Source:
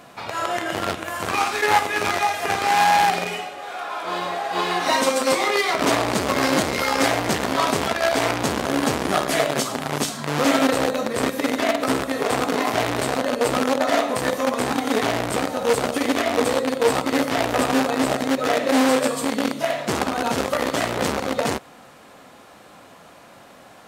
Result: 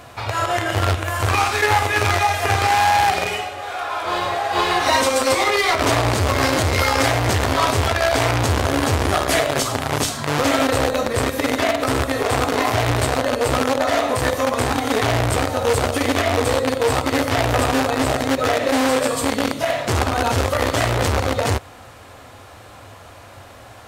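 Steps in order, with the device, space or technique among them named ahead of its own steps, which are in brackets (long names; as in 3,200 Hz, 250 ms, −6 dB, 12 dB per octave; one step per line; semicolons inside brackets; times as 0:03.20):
car stereo with a boomy subwoofer (low shelf with overshoot 130 Hz +9.5 dB, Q 3; brickwall limiter −10 dBFS, peak gain reduction 5.5 dB)
level +4.5 dB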